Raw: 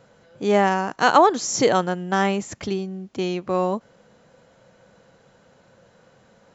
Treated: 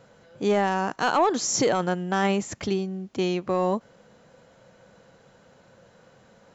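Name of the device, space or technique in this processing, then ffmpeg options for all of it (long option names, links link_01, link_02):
soft clipper into limiter: -af "asoftclip=type=tanh:threshold=-6.5dB,alimiter=limit=-14dB:level=0:latency=1:release=25"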